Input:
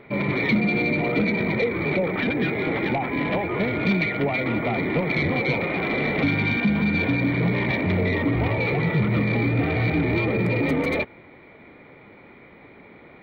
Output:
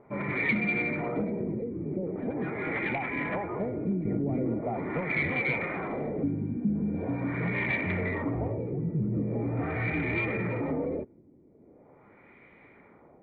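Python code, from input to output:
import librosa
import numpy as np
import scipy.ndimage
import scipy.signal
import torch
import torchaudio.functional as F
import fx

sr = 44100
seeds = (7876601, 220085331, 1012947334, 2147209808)

y = fx.dynamic_eq(x, sr, hz=1800.0, q=1.2, threshold_db=-39.0, ratio=4.0, max_db=4)
y = fx.filter_lfo_lowpass(y, sr, shape='sine', hz=0.42, low_hz=290.0, high_hz=2500.0, q=1.5)
y = fx.env_flatten(y, sr, amount_pct=100, at=(4.05, 4.54))
y = y * librosa.db_to_amplitude(-9.0)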